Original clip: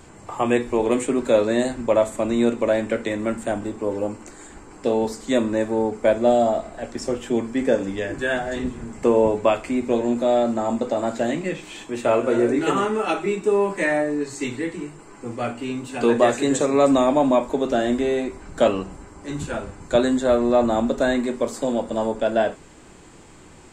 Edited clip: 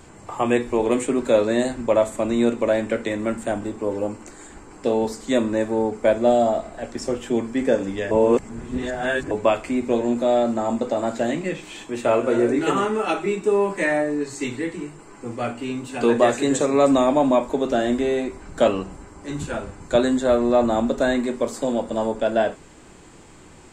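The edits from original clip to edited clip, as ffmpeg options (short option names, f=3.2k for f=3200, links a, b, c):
-filter_complex "[0:a]asplit=3[a][b][c];[a]atrim=end=8.112[d];[b]atrim=start=8.108:end=9.312,asetpts=PTS-STARTPTS,areverse[e];[c]atrim=start=9.308[f];[d][e]acrossfade=d=0.004:c1=hsin:c2=hsin[g];[g][f]acrossfade=d=0.004:c1=hsin:c2=hsin"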